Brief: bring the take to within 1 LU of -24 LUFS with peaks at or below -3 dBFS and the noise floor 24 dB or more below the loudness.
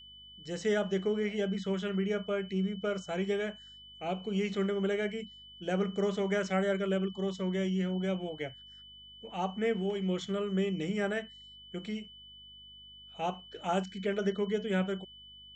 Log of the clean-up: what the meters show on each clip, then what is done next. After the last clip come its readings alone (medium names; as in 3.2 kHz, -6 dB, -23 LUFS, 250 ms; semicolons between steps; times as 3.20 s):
hum 50 Hz; highest harmonic 250 Hz; hum level -62 dBFS; steady tone 3 kHz; tone level -50 dBFS; loudness -33.0 LUFS; peak level -19.0 dBFS; loudness target -24.0 LUFS
-> de-hum 50 Hz, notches 5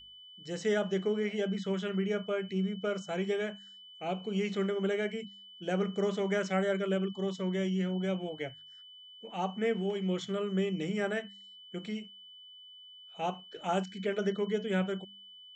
hum not found; steady tone 3 kHz; tone level -50 dBFS
-> band-stop 3 kHz, Q 30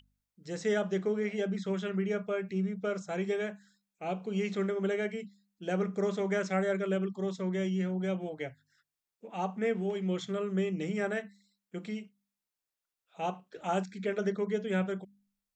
steady tone not found; loudness -33.5 LUFS; peak level -19.5 dBFS; loudness target -24.0 LUFS
-> trim +9.5 dB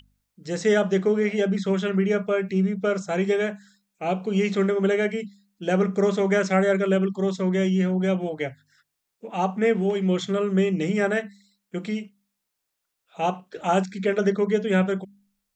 loudness -24.0 LUFS; peak level -10.0 dBFS; noise floor -80 dBFS